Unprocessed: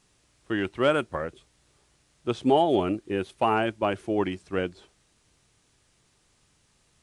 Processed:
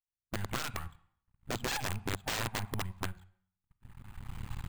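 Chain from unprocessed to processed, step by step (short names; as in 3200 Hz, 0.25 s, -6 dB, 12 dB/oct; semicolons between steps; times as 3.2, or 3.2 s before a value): rattling part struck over -30 dBFS, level -20 dBFS; recorder AGC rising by 14 dB/s; FFT band-reject 130–770 Hz; low-pass opened by the level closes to 2100 Hz, open at -21 dBFS; gate -52 dBFS, range -43 dB; tempo 1.5×; tilt shelf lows +8.5 dB, about 720 Hz; half-wave rectifier; careless resampling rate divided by 4×, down filtered, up hold; reverb RT60 0.60 s, pre-delay 29 ms, DRR 15.5 dB; wrapped overs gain 26.5 dB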